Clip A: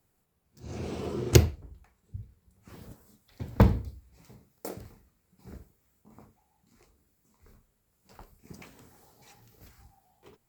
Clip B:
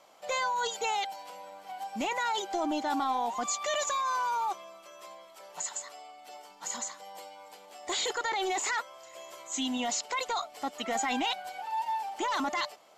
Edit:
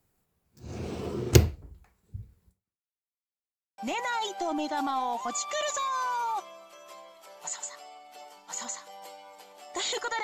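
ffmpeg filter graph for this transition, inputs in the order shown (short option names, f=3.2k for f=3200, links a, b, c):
-filter_complex "[0:a]apad=whole_dur=10.23,atrim=end=10.23,asplit=2[a][b];[a]atrim=end=2.95,asetpts=PTS-STARTPTS,afade=t=out:st=2.49:d=0.46:c=exp[c];[b]atrim=start=2.95:end=3.78,asetpts=PTS-STARTPTS,volume=0[d];[1:a]atrim=start=1.91:end=8.36,asetpts=PTS-STARTPTS,afade=t=in:d=0.004:c=hsin[e];[c][d][e]concat=n=3:v=0:a=1"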